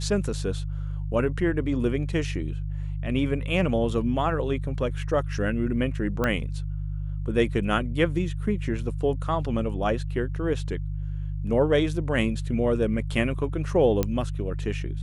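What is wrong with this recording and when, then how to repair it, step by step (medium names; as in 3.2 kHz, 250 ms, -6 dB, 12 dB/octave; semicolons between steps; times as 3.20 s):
hum 50 Hz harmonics 3 -30 dBFS
6.24 s: pop -12 dBFS
14.03 s: pop -11 dBFS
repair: de-click; de-hum 50 Hz, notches 3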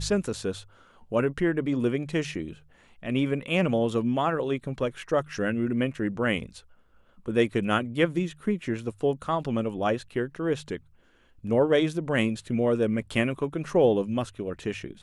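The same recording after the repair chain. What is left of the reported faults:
6.24 s: pop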